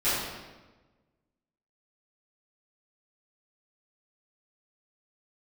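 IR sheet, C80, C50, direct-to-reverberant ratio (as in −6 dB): 1.5 dB, −1.5 dB, −16.0 dB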